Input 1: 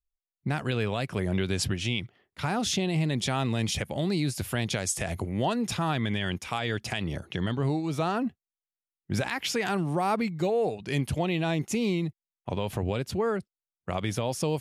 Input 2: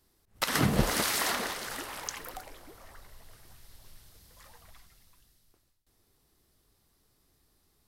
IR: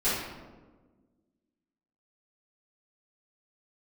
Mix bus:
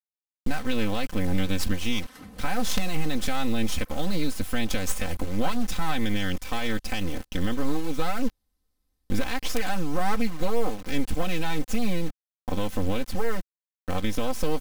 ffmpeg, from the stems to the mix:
-filter_complex "[0:a]acrusher=bits=4:dc=4:mix=0:aa=0.000001,volume=0dB[link_01];[1:a]adelay=1600,volume=-14dB,afade=type=in:start_time=3.7:duration=0.31:silence=0.375837[link_02];[link_01][link_02]amix=inputs=2:normalize=0,lowshelf=frequency=120:gain=10,aecho=1:1:3.9:0.83"

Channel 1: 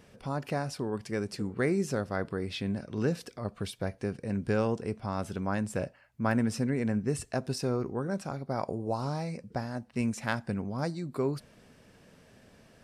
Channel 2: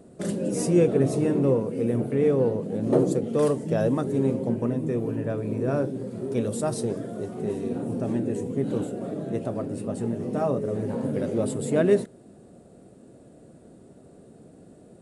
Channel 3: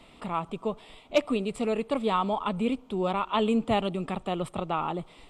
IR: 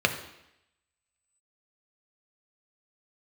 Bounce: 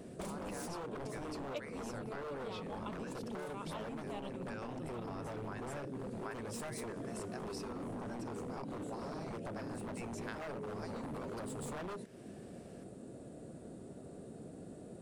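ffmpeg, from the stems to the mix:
-filter_complex "[0:a]highpass=860,volume=-4.5dB,asplit=2[link_01][link_02];[1:a]acompressor=threshold=-30dB:ratio=6,aeval=exprs='0.0266*(abs(mod(val(0)/0.0266+3,4)-2)-1)':channel_layout=same,volume=0dB[link_03];[2:a]highshelf=frequency=9700:gain=11.5,adelay=400,volume=-6dB[link_04];[link_02]apad=whole_len=251186[link_05];[link_04][link_05]sidechaincompress=threshold=-52dB:ratio=8:attack=16:release=314[link_06];[link_01][link_03][link_06]amix=inputs=3:normalize=0,acompressor=threshold=-41dB:ratio=4"

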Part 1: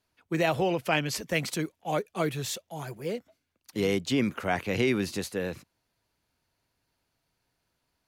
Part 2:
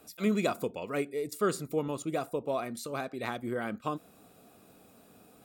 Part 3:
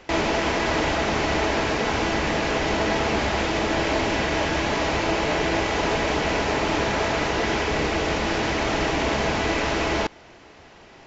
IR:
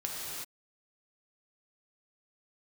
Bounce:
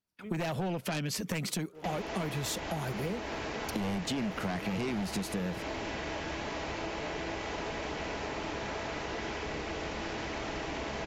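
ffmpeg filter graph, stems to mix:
-filter_complex "[0:a]equalizer=frequency=190:width_type=o:width=0.46:gain=11,aeval=exprs='0.316*sin(PI/2*2.82*val(0)/0.316)':channel_layout=same,volume=-0.5dB[link_01];[1:a]afwtdn=0.00794,volume=-18.5dB,asplit=2[link_02][link_03];[link_03]volume=-11dB[link_04];[2:a]adelay=1750,volume=-10.5dB[link_05];[link_01][link_02]amix=inputs=2:normalize=0,agate=range=-27dB:threshold=-50dB:ratio=16:detection=peak,acompressor=threshold=-25dB:ratio=4,volume=0dB[link_06];[3:a]atrim=start_sample=2205[link_07];[link_04][link_07]afir=irnorm=-1:irlink=0[link_08];[link_05][link_06][link_08]amix=inputs=3:normalize=0,acompressor=threshold=-34dB:ratio=3"

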